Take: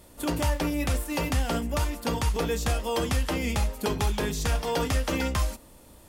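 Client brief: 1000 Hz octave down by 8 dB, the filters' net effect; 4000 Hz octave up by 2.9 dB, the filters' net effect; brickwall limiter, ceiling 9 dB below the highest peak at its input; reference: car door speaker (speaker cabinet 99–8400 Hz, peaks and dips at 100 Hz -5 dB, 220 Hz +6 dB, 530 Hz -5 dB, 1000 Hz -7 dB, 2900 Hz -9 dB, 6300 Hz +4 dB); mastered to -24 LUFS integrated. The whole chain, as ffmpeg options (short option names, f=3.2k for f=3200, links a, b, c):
-af "equalizer=f=1k:t=o:g=-7,equalizer=f=4k:t=o:g=7,alimiter=limit=-22dB:level=0:latency=1,highpass=99,equalizer=f=100:t=q:w=4:g=-5,equalizer=f=220:t=q:w=4:g=6,equalizer=f=530:t=q:w=4:g=-5,equalizer=f=1k:t=q:w=4:g=-7,equalizer=f=2.9k:t=q:w=4:g=-9,equalizer=f=6.3k:t=q:w=4:g=4,lowpass=f=8.4k:w=0.5412,lowpass=f=8.4k:w=1.3066,volume=9dB"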